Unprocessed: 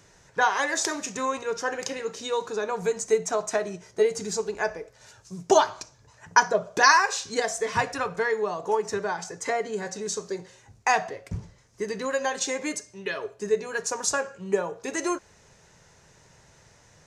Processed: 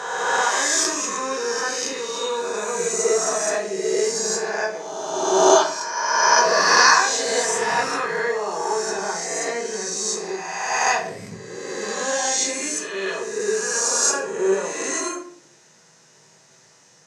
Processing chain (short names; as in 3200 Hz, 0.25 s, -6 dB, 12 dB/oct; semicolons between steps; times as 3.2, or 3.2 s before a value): spectral swells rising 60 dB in 1.84 s; HPF 160 Hz 24 dB/oct; bell 6400 Hz +6.5 dB 1.8 oct; shoebox room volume 55 m³, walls mixed, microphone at 0.63 m; gain -5 dB